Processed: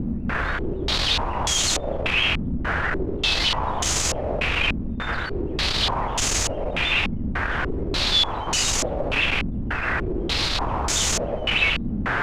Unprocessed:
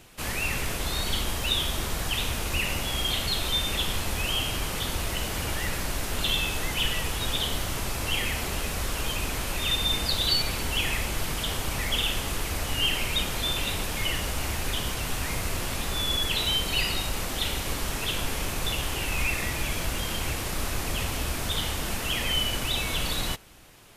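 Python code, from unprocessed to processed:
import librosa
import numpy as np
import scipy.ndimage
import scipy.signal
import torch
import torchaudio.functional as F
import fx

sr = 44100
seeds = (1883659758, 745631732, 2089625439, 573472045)

y = np.sign(x) * np.sqrt(np.mean(np.square(x)))
y = fx.stretch_vocoder(y, sr, factor=0.51)
y = fx.filter_held_lowpass(y, sr, hz=3.4, low_hz=230.0, high_hz=6700.0)
y = y * 10.0 ** (6.0 / 20.0)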